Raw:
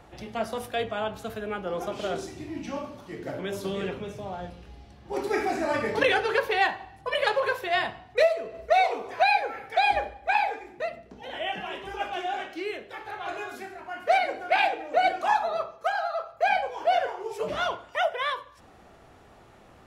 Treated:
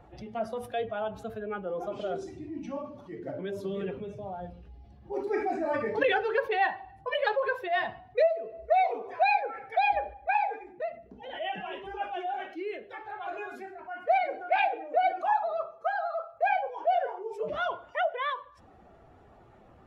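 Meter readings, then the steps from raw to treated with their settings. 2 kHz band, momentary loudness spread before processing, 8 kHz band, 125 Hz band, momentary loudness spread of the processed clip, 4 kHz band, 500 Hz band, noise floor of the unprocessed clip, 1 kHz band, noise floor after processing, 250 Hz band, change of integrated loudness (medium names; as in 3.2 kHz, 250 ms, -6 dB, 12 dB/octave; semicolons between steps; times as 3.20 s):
-4.5 dB, 13 LU, no reading, -4.5 dB, 13 LU, -8.5 dB, -2.0 dB, -53 dBFS, -2.0 dB, -56 dBFS, -3.0 dB, -3.0 dB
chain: spectral contrast enhancement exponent 1.5; trim -2.5 dB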